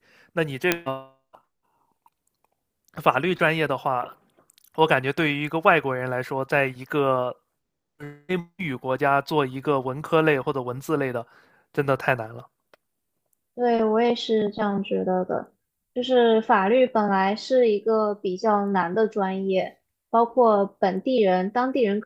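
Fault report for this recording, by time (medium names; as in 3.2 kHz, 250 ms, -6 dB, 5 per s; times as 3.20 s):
0.72 s: pop -3 dBFS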